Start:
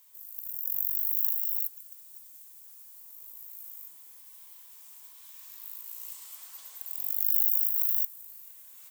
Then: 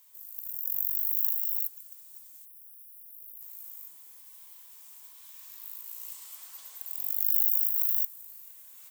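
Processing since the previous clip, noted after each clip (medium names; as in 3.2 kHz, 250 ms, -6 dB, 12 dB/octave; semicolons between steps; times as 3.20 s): spectral selection erased 2.45–3.41 s, 280–9000 Hz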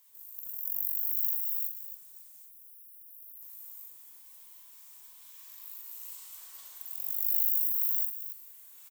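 loudspeakers at several distances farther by 15 m -5 dB, 95 m -10 dB; flange 1.7 Hz, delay 6.8 ms, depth 5 ms, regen +82%; feedback comb 370 Hz, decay 0.6 s, mix 60%; trim +8.5 dB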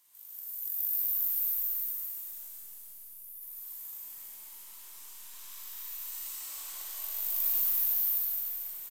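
saturation -14.5 dBFS, distortion -21 dB; resampled via 32 kHz; algorithmic reverb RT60 4.4 s, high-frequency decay 0.95×, pre-delay 70 ms, DRR -8.5 dB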